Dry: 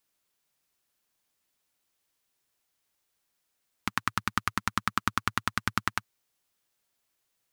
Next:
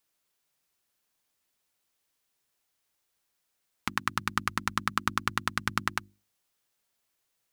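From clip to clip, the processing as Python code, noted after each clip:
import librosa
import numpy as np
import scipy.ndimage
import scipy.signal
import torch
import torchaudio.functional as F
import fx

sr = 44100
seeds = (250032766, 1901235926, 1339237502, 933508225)

y = fx.hum_notches(x, sr, base_hz=50, count=7)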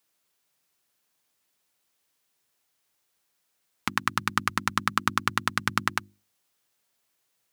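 y = scipy.signal.sosfilt(scipy.signal.butter(2, 82.0, 'highpass', fs=sr, output='sos'), x)
y = F.gain(torch.from_numpy(y), 3.5).numpy()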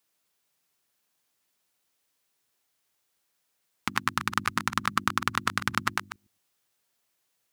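y = fx.reverse_delay(x, sr, ms=112, wet_db=-10.5)
y = F.gain(torch.from_numpy(y), -1.5).numpy()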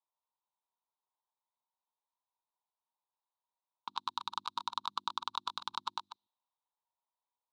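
y = fx.env_lowpass(x, sr, base_hz=1300.0, full_db=-29.5)
y = fx.double_bandpass(y, sr, hz=1900.0, octaves=2.0)
y = F.gain(torch.from_numpy(y), 1.0).numpy()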